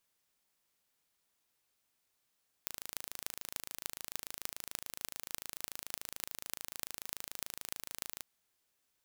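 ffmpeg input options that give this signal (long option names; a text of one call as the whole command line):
ffmpeg -f lavfi -i "aevalsrc='0.376*eq(mod(n,1639),0)*(0.5+0.5*eq(mod(n,13112),0))':duration=5.55:sample_rate=44100" out.wav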